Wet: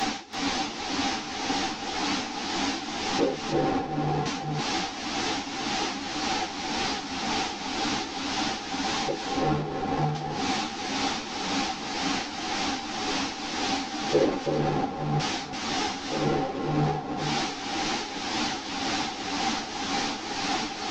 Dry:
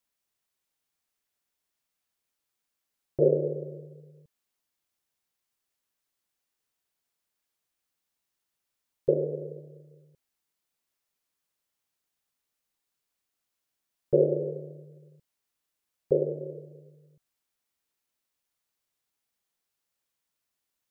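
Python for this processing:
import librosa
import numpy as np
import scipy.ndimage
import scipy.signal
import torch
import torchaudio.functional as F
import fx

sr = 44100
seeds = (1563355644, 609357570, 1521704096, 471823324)

p1 = fx.delta_mod(x, sr, bps=32000, step_db=-20.0)
p2 = fx.notch(p1, sr, hz=380.0, q=12.0)
p3 = fx.small_body(p2, sr, hz=(280.0, 780.0), ring_ms=45, db=17)
p4 = fx.dmg_noise_band(p3, sr, seeds[0], low_hz=170.0, high_hz=470.0, level_db=-36.0)
p5 = p4 * (1.0 - 0.93 / 2.0 + 0.93 / 2.0 * np.cos(2.0 * np.pi * 1.9 * (np.arange(len(p4)) / sr)))
p6 = 10.0 ** (-7.5 / 20.0) * np.tanh(p5 / 10.0 ** (-7.5 / 20.0))
p7 = p6 + fx.echo_single(p6, sr, ms=332, db=-5.0, dry=0)
y = fx.ensemble(p7, sr)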